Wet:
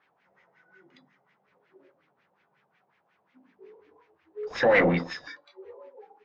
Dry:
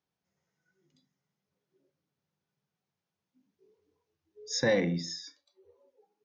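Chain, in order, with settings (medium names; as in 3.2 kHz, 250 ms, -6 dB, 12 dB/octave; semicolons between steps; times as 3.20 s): treble shelf 3.8 kHz +7 dB; de-hum 49.96 Hz, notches 31; overdrive pedal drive 27 dB, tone 3.6 kHz, clips at -15 dBFS; 4.43–5.14 s: word length cut 8-bit, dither none; LFO low-pass sine 5.5 Hz 700–2300 Hz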